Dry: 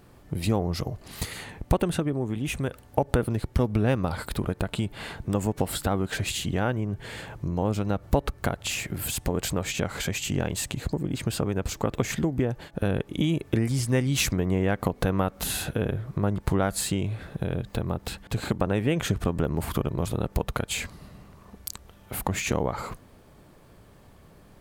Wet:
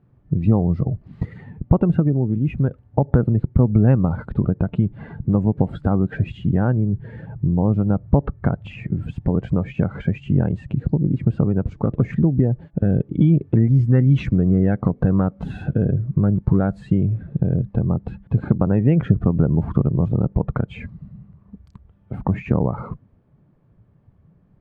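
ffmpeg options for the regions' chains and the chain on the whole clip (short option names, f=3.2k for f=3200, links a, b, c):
-filter_complex "[0:a]asettb=1/sr,asplit=3[a][b][c];[a]atrim=end=11.714[d];[b]atrim=start=11.71:end=16.9,asetpts=PTS-STARTPTS,afade=t=in:d=0.004:c=qsin,afade=t=out:st=5.186:d=0.004:c=qsin,equalizer=f=7.9k:w=0.73:g=5,volume=16dB,asoftclip=hard,volume=-16dB[e];[c]atrim=start=16.896[f];[d][e]acrossfade=d=0.004:c1=hsin:c2=qsin[g];[g][f]acrossfade=d=0.004:c1=qsin:c2=hsin,lowpass=2k,afftdn=nr=14:nf=-36,equalizer=f=150:w=0.69:g=12.5"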